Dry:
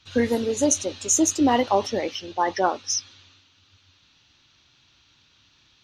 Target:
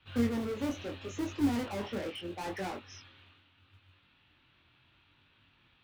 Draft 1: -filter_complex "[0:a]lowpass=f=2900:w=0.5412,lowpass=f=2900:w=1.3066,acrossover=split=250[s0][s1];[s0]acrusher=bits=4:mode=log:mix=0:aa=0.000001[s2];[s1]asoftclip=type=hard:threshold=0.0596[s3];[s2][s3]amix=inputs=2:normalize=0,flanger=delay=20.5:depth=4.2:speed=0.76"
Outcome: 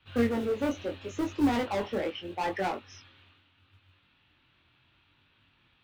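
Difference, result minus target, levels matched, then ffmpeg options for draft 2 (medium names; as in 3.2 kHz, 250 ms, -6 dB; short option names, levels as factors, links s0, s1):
hard clipper: distortion -5 dB
-filter_complex "[0:a]lowpass=f=2900:w=0.5412,lowpass=f=2900:w=1.3066,acrossover=split=250[s0][s1];[s0]acrusher=bits=4:mode=log:mix=0:aa=0.000001[s2];[s1]asoftclip=type=hard:threshold=0.0178[s3];[s2][s3]amix=inputs=2:normalize=0,flanger=delay=20.5:depth=4.2:speed=0.76"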